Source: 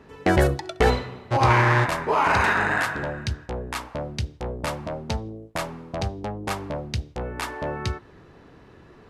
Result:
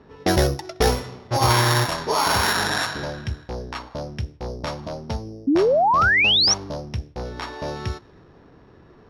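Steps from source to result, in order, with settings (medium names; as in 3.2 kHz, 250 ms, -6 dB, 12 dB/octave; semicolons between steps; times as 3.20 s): sorted samples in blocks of 8 samples; level-controlled noise filter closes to 2.4 kHz, open at -16 dBFS; painted sound rise, 5.47–6.54 s, 260–6000 Hz -17 dBFS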